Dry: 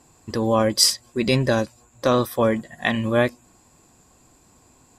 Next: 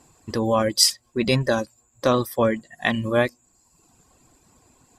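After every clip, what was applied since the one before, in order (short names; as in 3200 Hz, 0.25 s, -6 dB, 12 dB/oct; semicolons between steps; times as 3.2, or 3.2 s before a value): reverb removal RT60 0.85 s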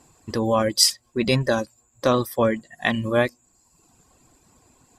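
nothing audible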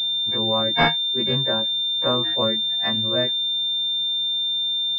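frequency quantiser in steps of 2 st; spectral gain 3.15–3.62, 660–1400 Hz -9 dB; pulse-width modulation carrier 3600 Hz; gain -3.5 dB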